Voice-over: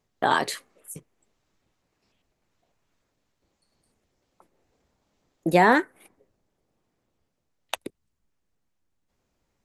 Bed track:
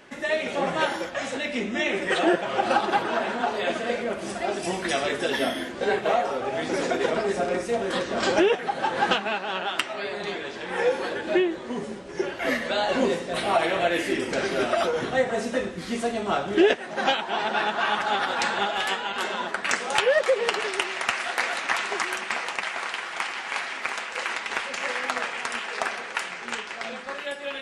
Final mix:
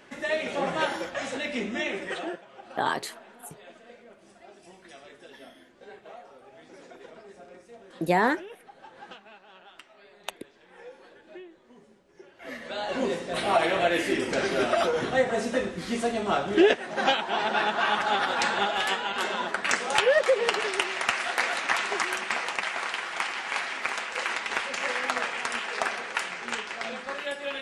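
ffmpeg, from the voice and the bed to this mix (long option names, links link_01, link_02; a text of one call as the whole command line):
ffmpeg -i stem1.wav -i stem2.wav -filter_complex "[0:a]adelay=2550,volume=-5dB[link_01];[1:a]volume=20dB,afade=type=out:start_time=1.66:duration=0.79:silence=0.0944061,afade=type=in:start_time=12.33:duration=1.23:silence=0.0749894[link_02];[link_01][link_02]amix=inputs=2:normalize=0" out.wav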